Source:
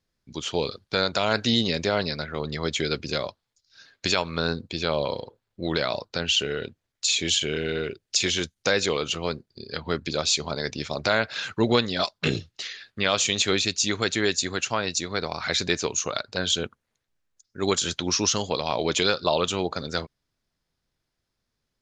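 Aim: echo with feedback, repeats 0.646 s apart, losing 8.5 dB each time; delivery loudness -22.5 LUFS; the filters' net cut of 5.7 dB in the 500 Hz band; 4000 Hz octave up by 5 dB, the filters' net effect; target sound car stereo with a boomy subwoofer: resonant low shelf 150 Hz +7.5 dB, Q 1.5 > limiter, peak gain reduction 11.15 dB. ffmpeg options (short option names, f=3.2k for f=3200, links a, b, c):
-af "lowshelf=f=150:t=q:w=1.5:g=7.5,equalizer=f=500:t=o:g=-6.5,equalizer=f=4k:t=o:g=6,aecho=1:1:646|1292|1938|2584:0.376|0.143|0.0543|0.0206,volume=4.5dB,alimiter=limit=-11dB:level=0:latency=1"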